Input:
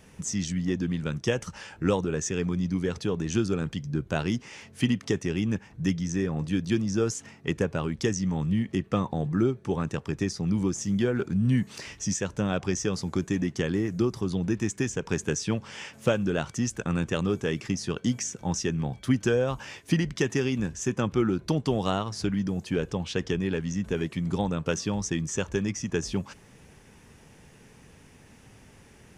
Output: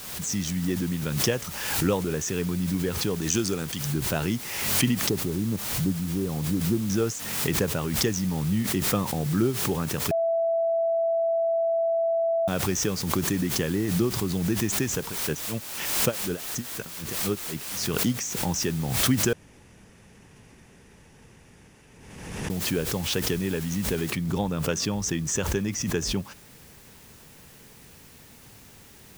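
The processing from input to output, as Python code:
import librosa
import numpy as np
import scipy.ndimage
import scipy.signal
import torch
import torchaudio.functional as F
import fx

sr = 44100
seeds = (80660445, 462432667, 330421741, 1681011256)

y = fx.bass_treble(x, sr, bass_db=-4, treble_db=12, at=(3.21, 3.92))
y = fx.cheby1_lowpass(y, sr, hz=1300.0, order=5, at=(5.09, 6.9))
y = fx.tremolo_db(y, sr, hz=4.0, depth_db=38, at=(15.07, 17.86))
y = fx.noise_floor_step(y, sr, seeds[0], at_s=24.1, before_db=-43, after_db=-53, tilt_db=0.0)
y = fx.edit(y, sr, fx.bleep(start_s=10.11, length_s=2.37, hz=664.0, db=-21.0),
    fx.room_tone_fill(start_s=19.33, length_s=3.17), tone=tone)
y = fx.pre_swell(y, sr, db_per_s=42.0)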